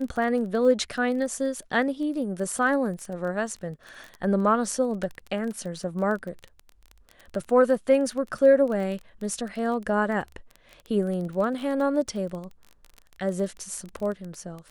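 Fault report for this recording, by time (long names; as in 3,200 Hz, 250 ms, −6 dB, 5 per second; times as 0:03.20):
surface crackle 20 per second −32 dBFS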